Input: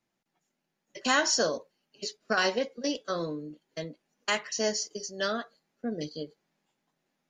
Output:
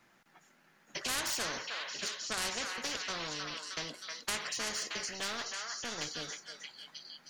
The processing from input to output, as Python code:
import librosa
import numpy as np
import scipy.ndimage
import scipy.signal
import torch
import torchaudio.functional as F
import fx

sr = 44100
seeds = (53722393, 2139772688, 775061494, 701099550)

y = fx.halfwave_gain(x, sr, db=-3.0, at=(5.13, 6.07))
y = fx.peak_eq(y, sr, hz=1500.0, db=10.0, octaves=1.4)
y = 10.0 ** (-15.5 / 20.0) * np.tanh(y / 10.0 ** (-15.5 / 20.0))
y = fx.echo_stepped(y, sr, ms=313, hz=1600.0, octaves=0.7, feedback_pct=70, wet_db=-7.5)
y = fx.spectral_comp(y, sr, ratio=4.0)
y = y * librosa.db_to_amplitude(-6.5)